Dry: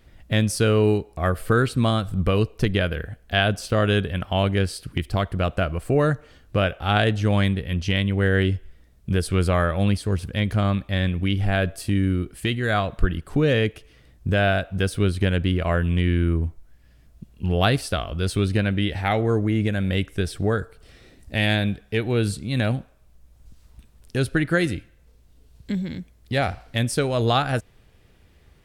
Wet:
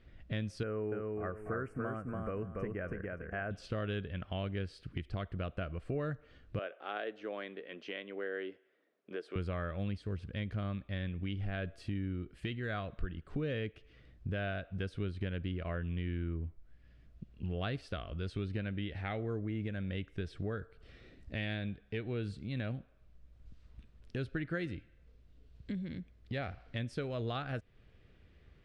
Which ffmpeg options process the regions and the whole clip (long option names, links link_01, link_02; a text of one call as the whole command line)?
ffmpeg -i in.wav -filter_complex "[0:a]asettb=1/sr,asplit=3[link_01][link_02][link_03];[link_01]atrim=end=0.634[link_04];[link_02]atrim=start=0.63:end=3.51,asetpts=PTS-STARTPTS,afade=type=in:duration=0.004:curve=qsin,afade=type=out:start_time=2.876:duration=0.004:curve=qsin,asuperstop=centerf=3800:order=4:qfactor=0.65,lowshelf=frequency=220:gain=-9.5,aecho=1:1:287|574|861:0.668|0.16|0.0385,atrim=end_sample=127008[link_05];[link_03]atrim=start=3.506[link_06];[link_04][link_05]acrossfade=duration=0.004:curve1=hsin:curve2=qsin[link_07];[link_07][link_06]acrossfade=duration=0.004:curve1=qsin:curve2=hsin,asettb=1/sr,asplit=3[link_08][link_09][link_10];[link_08]atrim=end=6.594[link_11];[link_09]atrim=start=6.59:end=9.36,asetpts=PTS-STARTPTS,afade=type=in:duration=0.004:curve=qsin,afade=type=out:start_time=2.766:duration=0.004:curve=qsin,highpass=frequency=350:width=0.5412,highpass=frequency=350:width=1.3066,highshelf=frequency=2400:gain=-11.5[link_12];[link_10]atrim=start=9.356[link_13];[link_11][link_12]acrossfade=duration=0.004:curve1=hsin:curve2=qsin[link_14];[link_14][link_13]acrossfade=duration=0.004:curve1=qsin:curve2=hsin,lowpass=3400,equalizer=frequency=870:width=2.6:gain=-7,acompressor=threshold=-35dB:ratio=2,volume=-6dB" out.wav